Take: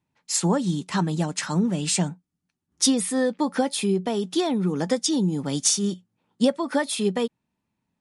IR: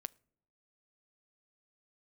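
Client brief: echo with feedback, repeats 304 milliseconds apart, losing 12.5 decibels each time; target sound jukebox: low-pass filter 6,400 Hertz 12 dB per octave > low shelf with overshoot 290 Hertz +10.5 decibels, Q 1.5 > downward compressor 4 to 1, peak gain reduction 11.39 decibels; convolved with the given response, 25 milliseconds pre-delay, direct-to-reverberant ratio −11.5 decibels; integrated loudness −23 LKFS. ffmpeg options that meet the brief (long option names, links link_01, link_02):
-filter_complex "[0:a]aecho=1:1:304|608|912:0.237|0.0569|0.0137,asplit=2[link_01][link_02];[1:a]atrim=start_sample=2205,adelay=25[link_03];[link_02][link_03]afir=irnorm=-1:irlink=0,volume=15dB[link_04];[link_01][link_04]amix=inputs=2:normalize=0,lowpass=6400,lowshelf=frequency=290:width_type=q:width=1.5:gain=10.5,acompressor=threshold=-7dB:ratio=4,volume=-11.5dB"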